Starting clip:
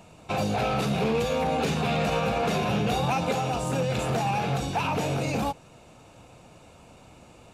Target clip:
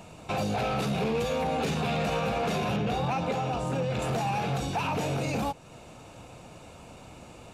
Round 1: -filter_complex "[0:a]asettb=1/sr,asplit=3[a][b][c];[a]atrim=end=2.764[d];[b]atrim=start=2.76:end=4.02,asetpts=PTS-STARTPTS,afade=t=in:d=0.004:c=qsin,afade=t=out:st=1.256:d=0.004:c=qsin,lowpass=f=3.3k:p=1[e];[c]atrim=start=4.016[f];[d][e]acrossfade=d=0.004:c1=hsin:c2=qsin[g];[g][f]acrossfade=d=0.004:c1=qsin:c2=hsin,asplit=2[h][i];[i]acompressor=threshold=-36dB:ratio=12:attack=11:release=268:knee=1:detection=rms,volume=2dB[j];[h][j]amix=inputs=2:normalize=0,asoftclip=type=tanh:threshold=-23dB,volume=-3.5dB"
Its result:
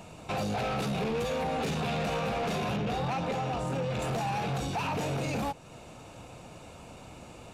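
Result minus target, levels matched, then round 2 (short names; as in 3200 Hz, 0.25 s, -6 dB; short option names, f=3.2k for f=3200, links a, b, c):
soft clip: distortion +9 dB
-filter_complex "[0:a]asettb=1/sr,asplit=3[a][b][c];[a]atrim=end=2.764[d];[b]atrim=start=2.76:end=4.02,asetpts=PTS-STARTPTS,afade=t=in:d=0.004:c=qsin,afade=t=out:st=1.256:d=0.004:c=qsin,lowpass=f=3.3k:p=1[e];[c]atrim=start=4.016[f];[d][e]acrossfade=d=0.004:c1=hsin:c2=qsin[g];[g][f]acrossfade=d=0.004:c1=qsin:c2=hsin,asplit=2[h][i];[i]acompressor=threshold=-36dB:ratio=12:attack=11:release=268:knee=1:detection=rms,volume=2dB[j];[h][j]amix=inputs=2:normalize=0,asoftclip=type=tanh:threshold=-16dB,volume=-3.5dB"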